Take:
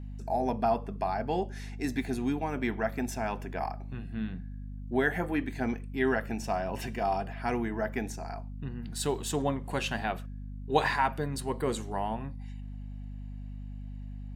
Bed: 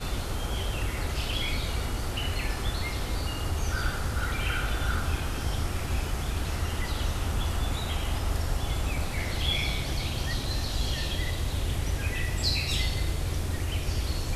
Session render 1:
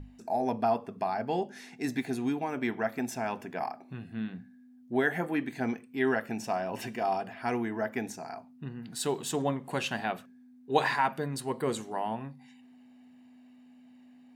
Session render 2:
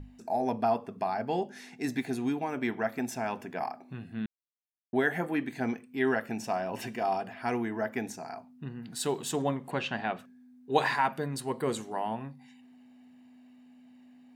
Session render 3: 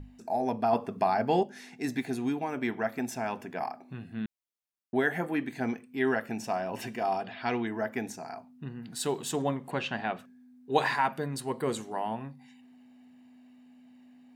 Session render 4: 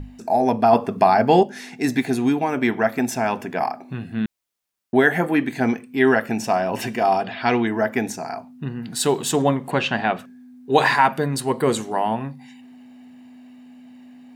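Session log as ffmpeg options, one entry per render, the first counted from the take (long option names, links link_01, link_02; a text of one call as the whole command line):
ffmpeg -i in.wav -af "bandreject=frequency=50:width_type=h:width=6,bandreject=frequency=100:width_type=h:width=6,bandreject=frequency=150:width_type=h:width=6,bandreject=frequency=200:width_type=h:width=6" out.wav
ffmpeg -i in.wav -filter_complex "[0:a]asplit=3[link_01][link_02][link_03];[link_01]afade=type=out:start_time=9.7:duration=0.02[link_04];[link_02]lowpass=3700,afade=type=in:start_time=9.7:duration=0.02,afade=type=out:start_time=10.18:duration=0.02[link_05];[link_03]afade=type=in:start_time=10.18:duration=0.02[link_06];[link_04][link_05][link_06]amix=inputs=3:normalize=0,asplit=3[link_07][link_08][link_09];[link_07]atrim=end=4.26,asetpts=PTS-STARTPTS,afade=type=out:start_time=4.256:duration=0.004:curve=hsin[link_10];[link_08]atrim=start=4.26:end=4.93,asetpts=PTS-STARTPTS,volume=0[link_11];[link_09]atrim=start=4.93,asetpts=PTS-STARTPTS,afade=type=in:duration=0.004:curve=hsin[link_12];[link_10][link_11][link_12]concat=n=3:v=0:a=1" out.wav
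ffmpeg -i in.wav -filter_complex "[0:a]asettb=1/sr,asplit=3[link_01][link_02][link_03];[link_01]atrim=end=7.244[link_04];[link_02]atrim=start=7.24:end=7.67,asetpts=PTS-STARTPTS,afade=type=in:duration=0.004:curve=qsin,afade=type=out:start_time=0.426:duration=0.004:curve=qsin,lowpass=frequency=3800:width_type=q:width=4.6[link_05];[link_03]atrim=start=7.666[link_06];[link_04][link_05]acrossfade=duration=0.004:curve1=hsin:curve2=qsin[link_07];[link_07][link_06]acrossfade=duration=0.004:curve1=qsin:curve2=hsin,asplit=3[link_08][link_09][link_10];[link_08]atrim=end=0.732[link_11];[link_09]atrim=start=0.728:end=1.432,asetpts=PTS-STARTPTS,volume=5dB[link_12];[link_10]atrim=start=1.428[link_13];[link_11][link_12]acrossfade=duration=0.004:curve1=hsin:curve2=hsin[link_14];[link_14][link_13]acrossfade=duration=0.004:curve1=hsin:curve2=hsin" out.wav
ffmpeg -i in.wav -af "volume=11dB,alimiter=limit=-3dB:level=0:latency=1" out.wav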